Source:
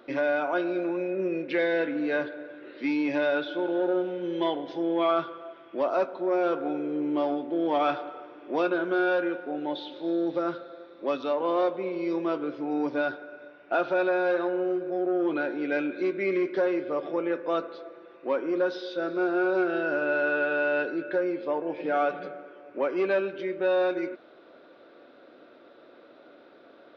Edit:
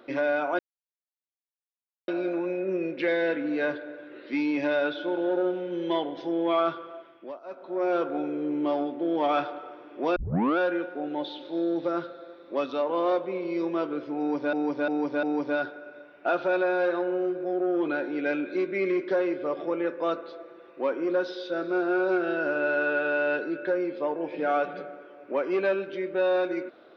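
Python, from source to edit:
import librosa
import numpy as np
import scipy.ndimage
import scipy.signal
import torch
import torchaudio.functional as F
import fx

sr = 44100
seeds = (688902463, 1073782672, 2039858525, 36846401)

y = fx.edit(x, sr, fx.insert_silence(at_s=0.59, length_s=1.49),
    fx.fade_down_up(start_s=5.44, length_s=0.98, db=-23.0, fade_s=0.48),
    fx.tape_start(start_s=8.67, length_s=0.42),
    fx.repeat(start_s=12.69, length_s=0.35, count=4), tone=tone)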